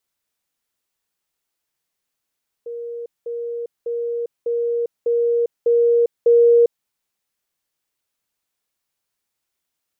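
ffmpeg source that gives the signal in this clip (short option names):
-f lavfi -i "aevalsrc='pow(10,(-27+3*floor(t/0.6))/20)*sin(2*PI*471*t)*clip(min(mod(t,0.6),0.4-mod(t,0.6))/0.005,0,1)':d=4.2:s=44100"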